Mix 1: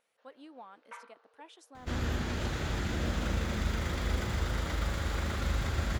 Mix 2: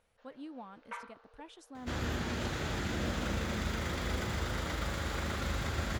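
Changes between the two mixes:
speech: remove HPF 410 Hz 12 dB/oct; first sound +4.5 dB; second sound: add HPF 100 Hz 6 dB/oct

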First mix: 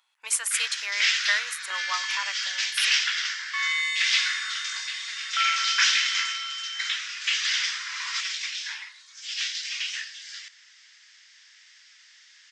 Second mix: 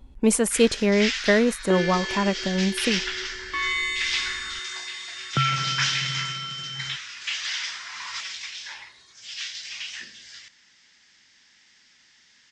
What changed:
first sound -4.0 dB; master: remove HPF 1200 Hz 24 dB/oct

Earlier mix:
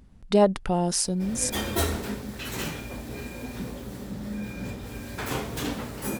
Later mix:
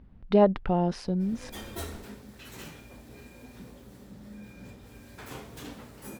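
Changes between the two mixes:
speech: add air absorption 330 m; background -12.0 dB

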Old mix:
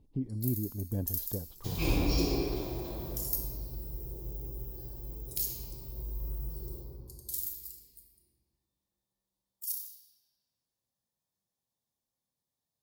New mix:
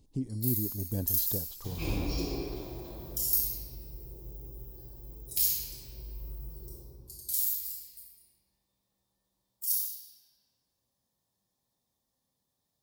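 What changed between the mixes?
speech: remove air absorption 410 m; first sound: send +10.5 dB; second sound -4.5 dB

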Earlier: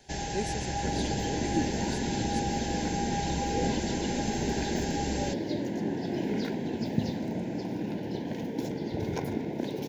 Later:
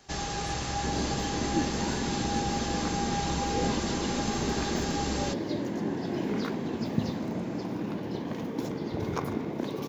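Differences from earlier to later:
speech -11.5 dB; first sound: add bell 4200 Hz +4 dB 1.1 oct; master: remove Butterworth band-stop 1200 Hz, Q 2.1

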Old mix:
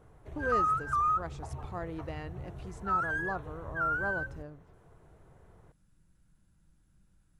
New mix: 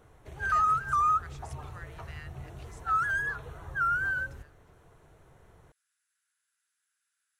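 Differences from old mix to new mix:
speech: add ladder high-pass 1300 Hz, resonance 45%; master: add high shelf 2100 Hz +11 dB

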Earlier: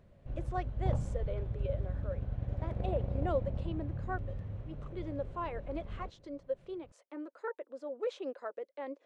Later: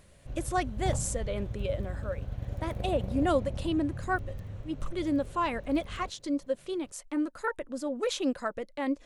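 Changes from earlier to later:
speech: remove ladder high-pass 360 Hz, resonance 40%; master: remove tape spacing loss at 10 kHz 23 dB

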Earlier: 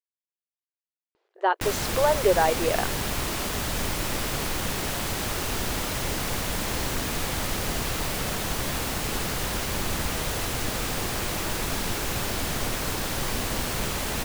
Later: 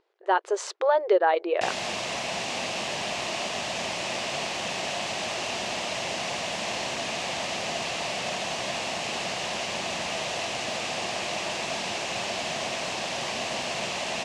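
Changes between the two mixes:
speech: entry -1.15 s; background: add speaker cabinet 240–7100 Hz, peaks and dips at 290 Hz -8 dB, 440 Hz -6 dB, 670 Hz +8 dB, 1400 Hz -8 dB, 2700 Hz +6 dB

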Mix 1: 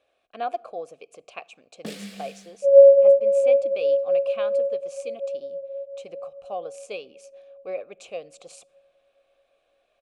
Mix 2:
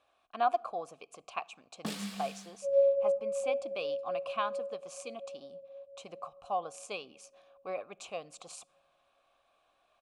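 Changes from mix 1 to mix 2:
second sound -7.5 dB; master: add graphic EQ 500/1000/2000 Hz -11/+11/-5 dB

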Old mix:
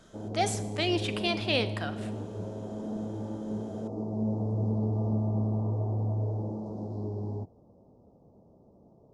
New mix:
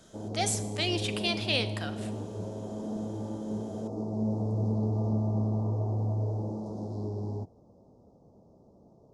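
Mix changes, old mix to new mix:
speech -4.5 dB; master: add high shelf 3100 Hz +11 dB

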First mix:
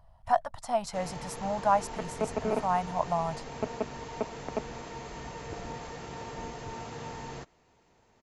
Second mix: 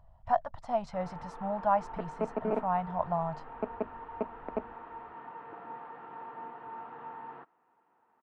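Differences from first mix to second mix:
first sound: add speaker cabinet 410–2400 Hz, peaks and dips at 410 Hz -6 dB, 590 Hz -10 dB, 910 Hz +4 dB, 1300 Hz +5 dB, 2200 Hz -8 dB; master: add tape spacing loss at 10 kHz 28 dB

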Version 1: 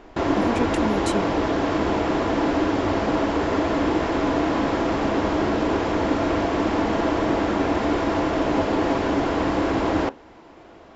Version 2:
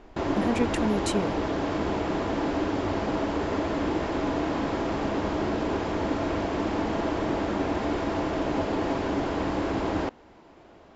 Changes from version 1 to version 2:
background -4.5 dB; reverb: off

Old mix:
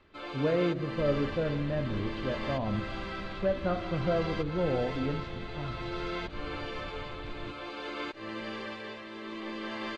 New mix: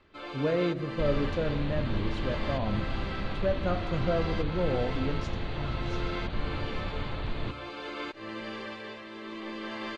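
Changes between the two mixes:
speech: remove Gaussian blur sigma 2.3 samples; second sound +9.5 dB

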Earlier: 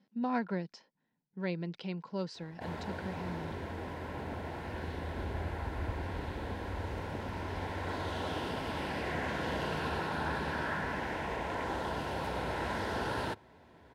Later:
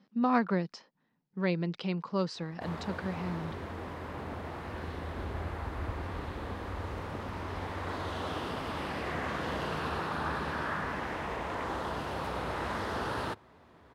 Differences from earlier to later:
speech +5.5 dB; master: remove Butterworth band-stop 1200 Hz, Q 5.5

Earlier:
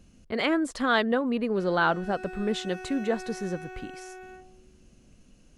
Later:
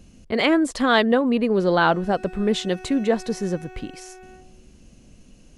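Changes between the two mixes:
speech +7.0 dB; master: add bell 1400 Hz -4 dB 0.6 oct

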